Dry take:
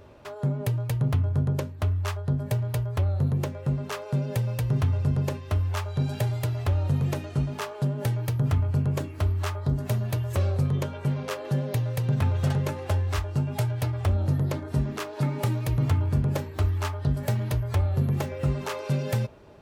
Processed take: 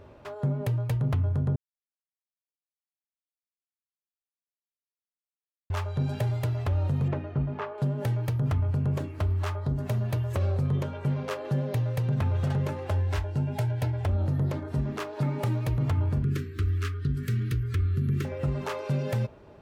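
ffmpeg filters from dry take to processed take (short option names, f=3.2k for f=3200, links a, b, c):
-filter_complex "[0:a]asettb=1/sr,asplit=3[a][b][c];[a]atrim=end=7.084[d];[b]atrim=start=7.08:end=7.78,asetpts=PTS-STARTPTS,afade=t=in:d=0.004:c=qsin,afade=t=out:st=0.696:d=0.004:c=qsin,lowpass=2.1k[e];[c]atrim=start=7.776[f];[d][e]acrossfade=d=0.004:c1=hsin:c2=qsin[g];[g][f]acrossfade=d=0.004:c1=qsin:c2=hsin,asettb=1/sr,asplit=3[h][i][j];[h]atrim=end=13.004[k];[i]atrim=start=13:end=14.09,asetpts=PTS-STARTPTS,afade=t=in:d=0.004:c=qsin,afade=t=out:st=1.086:d=0.004:c=qsin,asuperstop=centerf=1200:order=4:qfactor=7.2[l];[j]atrim=start=14.086[m];[k][l]acrossfade=d=0.004:c1=hsin:c2=qsin[n];[n][m]acrossfade=d=0.004:c1=qsin:c2=hsin,asettb=1/sr,asplit=3[o][p][q];[o]atrim=end=16.234[r];[p]atrim=start=16.23:end=18.25,asetpts=PTS-STARTPTS,afade=t=in:d=0.004:c=qsin,afade=t=out:st=2.016:d=0.004:c=qsin,asuperstop=centerf=730:order=8:qfactor=0.86[s];[q]atrim=start=18.246[t];[r][s]acrossfade=d=0.004:c1=hsin:c2=qsin[u];[u][t]acrossfade=d=0.004:c1=qsin:c2=hsin,asplit=3[v][w][x];[v]atrim=end=1.56,asetpts=PTS-STARTPTS,afade=t=out:st=1.556:d=0.004:c=hsin[y];[w]atrim=start=1.56:end=5.7,asetpts=PTS-STARTPTS,volume=0[z];[x]atrim=start=5.7,asetpts=PTS-STARTPTS,afade=t=in:d=0.004:c=hsin[aa];[y][z][aa]concat=n=3:v=0:a=1,highshelf=f=3.8k:g=-8,alimiter=limit=-19dB:level=0:latency=1:release=61"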